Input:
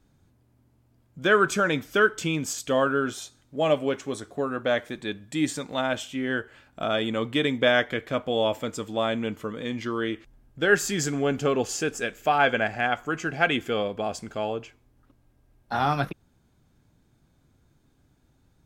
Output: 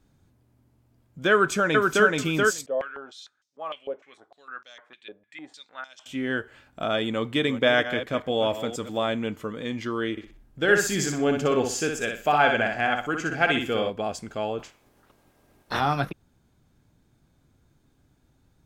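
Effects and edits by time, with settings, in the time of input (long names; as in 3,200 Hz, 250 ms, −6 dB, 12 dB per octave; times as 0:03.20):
0:01.31–0:02.07: delay throw 430 ms, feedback 10%, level −2 dB
0:02.66–0:06.06: band-pass on a step sequencer 6.6 Hz 570–5,500 Hz
0:07.13–0:09.13: delay that plays each chunk backwards 233 ms, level −11.5 dB
0:10.11–0:13.90: repeating echo 61 ms, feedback 29%, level −5 dB
0:14.58–0:15.79: ceiling on every frequency bin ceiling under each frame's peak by 20 dB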